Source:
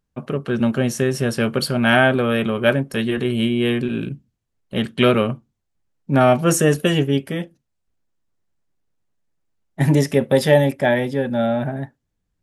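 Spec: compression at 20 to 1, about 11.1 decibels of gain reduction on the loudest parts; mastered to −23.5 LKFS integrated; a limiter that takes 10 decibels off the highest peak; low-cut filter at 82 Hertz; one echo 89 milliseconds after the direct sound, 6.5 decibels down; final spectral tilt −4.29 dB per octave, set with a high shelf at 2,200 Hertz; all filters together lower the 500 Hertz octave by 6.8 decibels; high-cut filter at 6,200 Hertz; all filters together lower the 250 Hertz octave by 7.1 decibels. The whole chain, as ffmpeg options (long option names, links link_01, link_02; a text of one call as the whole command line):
ffmpeg -i in.wav -af "highpass=82,lowpass=6200,equalizer=frequency=250:width_type=o:gain=-7,equalizer=frequency=500:width_type=o:gain=-7.5,highshelf=frequency=2200:gain=7.5,acompressor=threshold=-21dB:ratio=20,alimiter=limit=-18dB:level=0:latency=1,aecho=1:1:89:0.473,volume=5dB" out.wav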